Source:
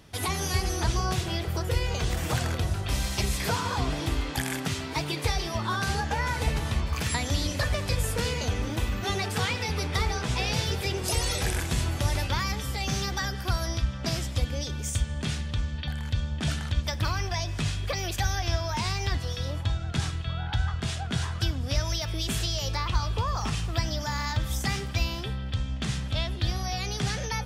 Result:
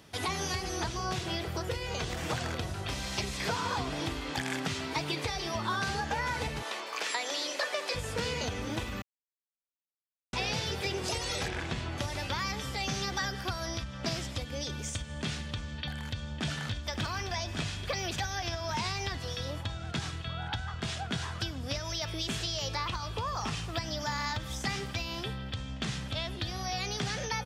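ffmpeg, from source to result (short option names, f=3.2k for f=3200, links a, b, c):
-filter_complex "[0:a]asettb=1/sr,asplit=3[a][b][c];[a]atrim=end=6.624[d];[b]atrim=start=6.62:end=7.95,asetpts=PTS-STARTPTS,afade=t=in:d=0.004:c=qsin,afade=t=out:st=1.326:d=0.004:c=qsin,highpass=f=380:w=0.5412,highpass=f=380:w=1.3066[e];[c]atrim=start=7.946[f];[d][e]acrossfade=d=0.004:c1=hsin:c2=qsin[g];[g][f]acrossfade=d=0.004:c1=qsin:c2=hsin,asettb=1/sr,asplit=3[h][i][j];[h]atrim=end=11.484[k];[i]atrim=start=11.48:end=11.98,asetpts=PTS-STARTPTS,afade=t=in:d=0.004:c=qsin,afade=t=out:st=0.496:d=0.004:c=qsin,lowpass=3.9k[l];[j]atrim=start=11.976[m];[k][l]acrossfade=d=0.004:c1=hsin:c2=qsin[n];[n][m]acrossfade=d=0.004:c1=qsin:c2=hsin,asplit=2[o][p];[p]afade=t=in:st=15.93:d=0.01,afade=t=out:st=16.49:d=0.01,aecho=0:1:570|1140|1710|2280|2850|3420|3990|4560|5130:0.891251|0.534751|0.32085|0.19251|0.115506|0.0693037|0.0415822|0.0249493|0.0149696[q];[o][q]amix=inputs=2:normalize=0,asplit=3[r][s][t];[r]atrim=end=9.02,asetpts=PTS-STARTPTS,afade=t=out:st=9.016:d=0.004:c=hsin[u];[s]atrim=start=9.02:end=10.33,asetpts=PTS-STARTPTS,volume=0[v];[t]atrim=start=10.33,asetpts=PTS-STARTPTS,afade=t=in:d=0.004:c=hsin[w];[u][v][w]concat=n=3:v=0:a=1,acompressor=threshold=-26dB:ratio=6,highpass=f=170:p=1,acrossover=split=7400[x][y];[y]acompressor=threshold=-56dB:ratio=4:attack=1:release=60[z];[x][z]amix=inputs=2:normalize=0"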